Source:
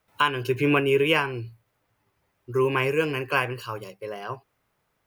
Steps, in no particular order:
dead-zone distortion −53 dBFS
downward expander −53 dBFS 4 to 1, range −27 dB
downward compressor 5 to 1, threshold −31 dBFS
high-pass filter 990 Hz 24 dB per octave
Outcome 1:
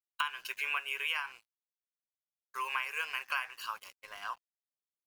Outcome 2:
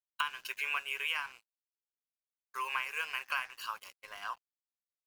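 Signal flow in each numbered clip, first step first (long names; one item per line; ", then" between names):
high-pass filter, then dead-zone distortion, then downward expander, then downward compressor
high-pass filter, then downward compressor, then dead-zone distortion, then downward expander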